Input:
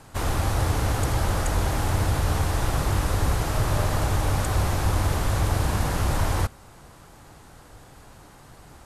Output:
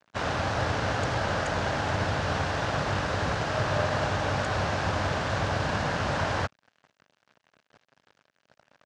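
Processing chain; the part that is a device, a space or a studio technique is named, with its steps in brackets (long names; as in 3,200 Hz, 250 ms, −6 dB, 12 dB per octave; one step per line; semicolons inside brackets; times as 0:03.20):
blown loudspeaker (dead-zone distortion −42 dBFS; loudspeaker in its box 130–5,800 Hz, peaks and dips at 340 Hz −5 dB, 610 Hz +5 dB, 1,600 Hz +6 dB, 2,800 Hz +3 dB)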